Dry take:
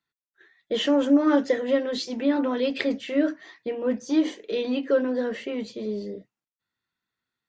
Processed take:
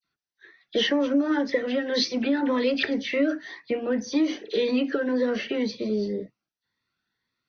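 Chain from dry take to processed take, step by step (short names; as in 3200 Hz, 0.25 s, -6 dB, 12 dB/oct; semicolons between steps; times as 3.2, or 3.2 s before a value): dynamic EQ 2000 Hz, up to +4 dB, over -42 dBFS, Q 1.3; compressor 6:1, threshold -25 dBFS, peak gain reduction 11 dB; rippled Chebyshev low-pass 6100 Hz, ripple 3 dB; dispersion lows, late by 43 ms, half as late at 2900 Hz; cascading phaser rising 1.9 Hz; gain +8.5 dB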